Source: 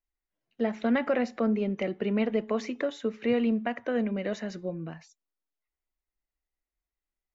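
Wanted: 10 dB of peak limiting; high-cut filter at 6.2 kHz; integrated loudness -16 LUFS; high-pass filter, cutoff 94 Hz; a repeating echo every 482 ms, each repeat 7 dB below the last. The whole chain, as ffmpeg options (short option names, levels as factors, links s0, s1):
-af "highpass=94,lowpass=6200,alimiter=level_in=1.12:limit=0.0631:level=0:latency=1,volume=0.891,aecho=1:1:482|964|1446|1928|2410:0.447|0.201|0.0905|0.0407|0.0183,volume=7.94"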